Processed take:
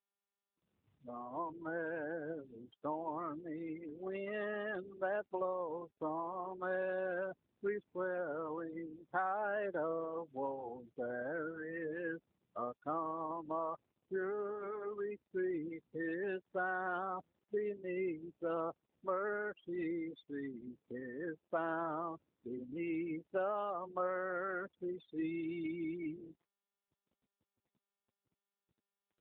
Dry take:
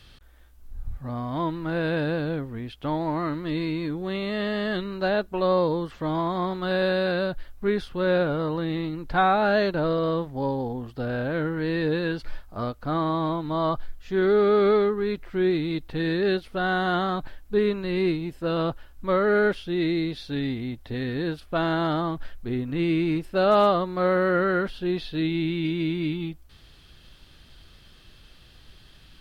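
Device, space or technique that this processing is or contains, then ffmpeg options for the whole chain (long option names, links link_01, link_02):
voicemail: -filter_complex "[0:a]asettb=1/sr,asplit=3[link_01][link_02][link_03];[link_01]atrim=end=25.354[link_04];[link_02]atrim=start=25.35:end=25.85,asetpts=PTS-STARTPTS,afade=type=in:duration=0.004:curve=qsin,afade=type=out:start_time=0.496:duration=0.004:curve=qsin,highpass=frequency=46:poles=1[link_05];[link_03]atrim=start=25.846[link_06];[link_04][link_05]acrossfade=duration=0.004:curve1=hsin:curve2=qsin[link_07];[link_07][link_06]acrossfade=duration=0.004:curve1=qsin:curve2=hsin,afftfilt=real='re*gte(hypot(re,im),0.0501)':imag='im*gte(hypot(re,im),0.0501)':win_size=1024:overlap=0.75,highpass=380,lowpass=2600,aemphasis=mode=production:type=cd,acompressor=threshold=-26dB:ratio=8,volume=-5.5dB" -ar 8000 -c:a libopencore_amrnb -b:a 7400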